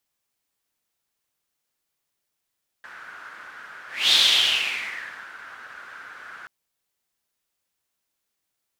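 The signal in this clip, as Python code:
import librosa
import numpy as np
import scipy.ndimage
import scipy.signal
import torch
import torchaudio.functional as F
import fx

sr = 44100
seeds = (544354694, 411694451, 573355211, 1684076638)

y = fx.whoosh(sr, seeds[0], length_s=3.63, peak_s=1.28, rise_s=0.26, fall_s=1.29, ends_hz=1500.0, peak_hz=3600.0, q=5.8, swell_db=25.0)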